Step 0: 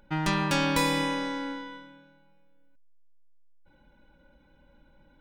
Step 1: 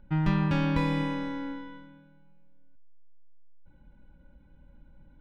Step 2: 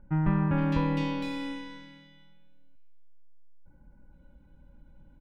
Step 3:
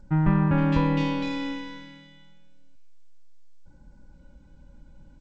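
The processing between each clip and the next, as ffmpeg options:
-filter_complex "[0:a]acrossover=split=5200[a][b];[b]acompressor=threshold=-44dB:ratio=4:attack=1:release=60[c];[a][c]amix=inputs=2:normalize=0,bass=f=250:g=13,treble=f=4k:g=-12,volume=-5.5dB"
-filter_complex "[0:a]acrossover=split=2100[a][b];[b]adelay=460[c];[a][c]amix=inputs=2:normalize=0"
-af "volume=4.5dB" -ar 16000 -c:a g722

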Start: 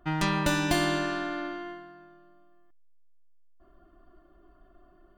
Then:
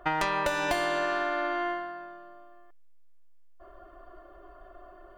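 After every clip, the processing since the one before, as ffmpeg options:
-af "equalizer=f=125:t=o:w=1:g=-10,equalizer=f=250:t=o:w=1:g=-10,equalizer=f=500:t=o:w=1:g=12,equalizer=f=1k:t=o:w=1:g=5,equalizer=f=2k:t=o:w=1:g=5,acompressor=threshold=-30dB:ratio=8,volume=5dB"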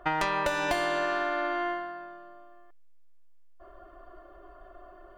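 -af "highshelf=f=8.7k:g=-3"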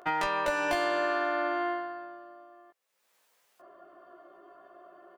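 -filter_complex "[0:a]acrossover=split=130[a][b];[a]acrusher=bits=4:dc=4:mix=0:aa=0.000001[c];[b]acompressor=mode=upward:threshold=-49dB:ratio=2.5[d];[c][d]amix=inputs=2:normalize=0,asplit=2[e][f];[f]adelay=17,volume=-2.5dB[g];[e][g]amix=inputs=2:normalize=0,volume=-4dB"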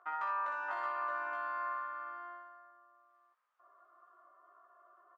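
-af "bandpass=f=1.2k:t=q:w=4.9:csg=0,aecho=1:1:59|621:0.562|0.631,volume=-2dB"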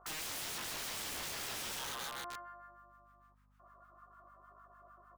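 -filter_complex "[0:a]acrossover=split=1000[a][b];[a]aeval=exprs='val(0)*(1-1/2+1/2*cos(2*PI*6.6*n/s))':c=same[c];[b]aeval=exprs='val(0)*(1-1/2-1/2*cos(2*PI*6.6*n/s))':c=same[d];[c][d]amix=inputs=2:normalize=0,aeval=exprs='(mod(188*val(0)+1,2)-1)/188':c=same,aeval=exprs='val(0)+0.000141*(sin(2*PI*50*n/s)+sin(2*PI*2*50*n/s)/2+sin(2*PI*3*50*n/s)/3+sin(2*PI*4*50*n/s)/4+sin(2*PI*5*50*n/s)/5)':c=same,volume=8.5dB"

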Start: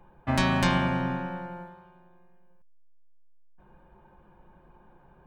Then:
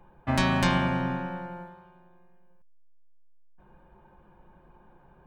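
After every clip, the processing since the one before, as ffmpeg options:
-af anull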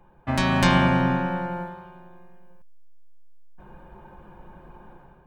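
-af "dynaudnorm=f=410:g=3:m=10dB"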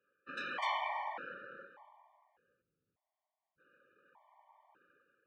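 -af "afftfilt=real='hypot(re,im)*cos(2*PI*random(0))':imag='hypot(re,im)*sin(2*PI*random(1))':win_size=512:overlap=0.75,highpass=780,lowpass=3.5k,afftfilt=real='re*gt(sin(2*PI*0.84*pts/sr)*(1-2*mod(floor(b*sr/1024/600),2)),0)':imag='im*gt(sin(2*PI*0.84*pts/sr)*(1-2*mod(floor(b*sr/1024/600),2)),0)':win_size=1024:overlap=0.75,volume=-3.5dB"

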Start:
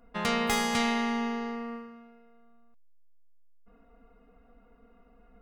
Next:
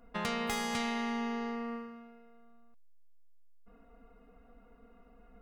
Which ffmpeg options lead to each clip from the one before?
-af "acompressor=threshold=-34dB:ratio=2.5"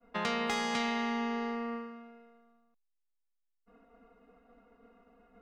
-filter_complex "[0:a]acrossover=split=170 7000:gain=0.224 1 0.141[a][b][c];[a][b][c]amix=inputs=3:normalize=0,agate=range=-33dB:threshold=-59dB:ratio=3:detection=peak,volume=2.5dB"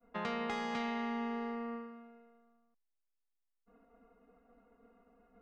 -af "lowpass=f=1.9k:p=1,volume=-3.5dB"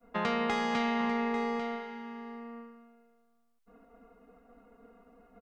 -af "aecho=1:1:845:0.282,volume=7dB"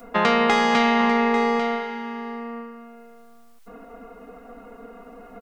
-filter_complex "[0:a]equalizer=f=81:t=o:w=1.9:g=-10.5,asplit=2[a][b];[b]acompressor=mode=upward:threshold=-42dB:ratio=2.5,volume=-2dB[c];[a][c]amix=inputs=2:normalize=0,volume=7.5dB"

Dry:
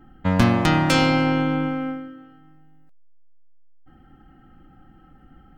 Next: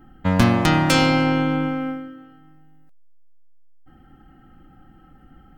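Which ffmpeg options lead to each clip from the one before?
-af "highshelf=f=7.6k:g=5.5,volume=1dB"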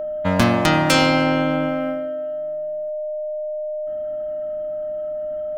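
-af "aeval=exprs='val(0)+0.0562*sin(2*PI*610*n/s)':c=same,lowshelf=f=190:g=-7,volume=2dB"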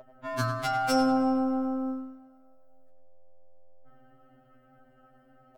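-filter_complex "[0:a]asplit=2[a][b];[b]adelay=100,lowpass=f=3.3k:p=1,volume=-7.5dB,asplit=2[c][d];[d]adelay=100,lowpass=f=3.3k:p=1,volume=0.53,asplit=2[e][f];[f]adelay=100,lowpass=f=3.3k:p=1,volume=0.53,asplit=2[g][h];[h]adelay=100,lowpass=f=3.3k:p=1,volume=0.53,asplit=2[i][j];[j]adelay=100,lowpass=f=3.3k:p=1,volume=0.53,asplit=2[k][l];[l]adelay=100,lowpass=f=3.3k:p=1,volume=0.53[m];[a][c][e][g][i][k][m]amix=inputs=7:normalize=0,afftfilt=real='re*2.45*eq(mod(b,6),0)':imag='im*2.45*eq(mod(b,6),0)':win_size=2048:overlap=0.75,volume=-8dB"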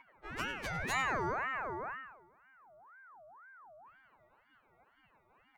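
-af "aeval=exprs='val(0)*sin(2*PI*1100*n/s+1100*0.45/2*sin(2*PI*2*n/s))':c=same,volume=-7dB"

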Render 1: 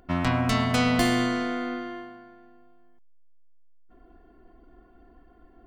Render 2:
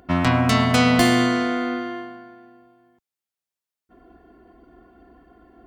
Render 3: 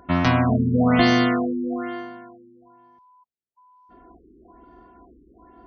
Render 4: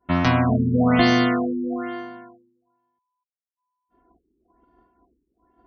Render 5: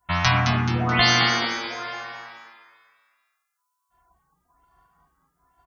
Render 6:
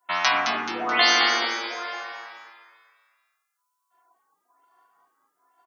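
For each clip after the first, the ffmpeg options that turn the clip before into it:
-af "highpass=66,volume=6dB"
-af "aeval=exprs='val(0)+0.00251*sin(2*PI*1000*n/s)':c=same,afftfilt=real='re*lt(b*sr/1024,430*pow(6600/430,0.5+0.5*sin(2*PI*1.1*pts/sr)))':imag='im*lt(b*sr/1024,430*pow(6600/430,0.5+0.5*sin(2*PI*1.1*pts/sr)))':win_size=1024:overlap=0.75"
-af "agate=range=-33dB:threshold=-40dB:ratio=3:detection=peak"
-filter_complex "[0:a]firequalizer=gain_entry='entry(150,0);entry(240,-23);entry(810,1);entry(6700,14)':delay=0.05:min_phase=1,asplit=2[a][b];[b]asplit=6[c][d][e][f][g][h];[c]adelay=215,afreqshift=110,volume=-6dB[i];[d]adelay=430,afreqshift=220,volume=-12.7dB[j];[e]adelay=645,afreqshift=330,volume=-19.5dB[k];[f]adelay=860,afreqshift=440,volume=-26.2dB[l];[g]adelay=1075,afreqshift=550,volume=-33dB[m];[h]adelay=1290,afreqshift=660,volume=-39.7dB[n];[i][j][k][l][m][n]amix=inputs=6:normalize=0[o];[a][o]amix=inputs=2:normalize=0"
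-af "highpass=f=320:w=0.5412,highpass=f=320:w=1.3066"

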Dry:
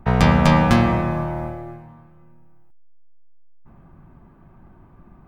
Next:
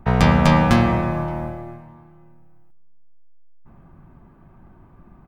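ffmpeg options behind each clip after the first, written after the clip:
-filter_complex "[0:a]asplit=2[a][b];[b]adelay=571.4,volume=-25dB,highshelf=f=4k:g=-12.9[c];[a][c]amix=inputs=2:normalize=0"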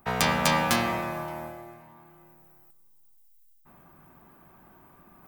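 -af "aemphasis=mode=production:type=riaa,areverse,acompressor=mode=upward:threshold=-41dB:ratio=2.5,areverse,volume=-5.5dB"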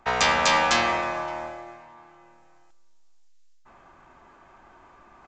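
-af "equalizer=f=160:w=0.77:g=-15,aresample=16000,asoftclip=type=hard:threshold=-22dB,aresample=44100,volume=6.5dB"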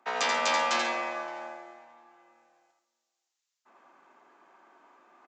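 -filter_complex "[0:a]highpass=f=240:w=0.5412,highpass=f=240:w=1.3066,asplit=2[a][b];[b]aecho=0:1:84.55|137:0.562|0.251[c];[a][c]amix=inputs=2:normalize=0,volume=-7.5dB"

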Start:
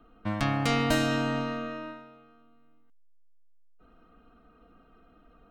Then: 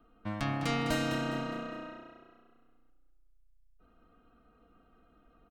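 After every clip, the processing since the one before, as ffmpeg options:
-filter_complex "[0:a]asplit=5[a][b][c][d][e];[b]adelay=205,afreqshift=30,volume=-9.5dB[f];[c]adelay=410,afreqshift=60,volume=-17.9dB[g];[d]adelay=615,afreqshift=90,volume=-26.3dB[h];[e]adelay=820,afreqshift=120,volume=-34.7dB[i];[a][f][g][h][i]amix=inputs=5:normalize=0,volume=-6dB"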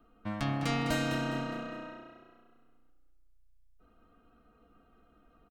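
-filter_complex "[0:a]asplit=2[a][b];[b]adelay=14,volume=-12dB[c];[a][c]amix=inputs=2:normalize=0"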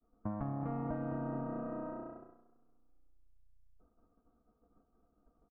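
-af "acompressor=threshold=-42dB:ratio=4,lowpass=f=1.1k:w=0.5412,lowpass=f=1.1k:w=1.3066,agate=range=-33dB:threshold=-53dB:ratio=3:detection=peak,volume=6dB"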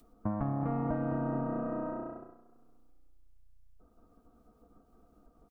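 -af "acompressor=mode=upward:threshold=-59dB:ratio=2.5,volume=5.5dB"

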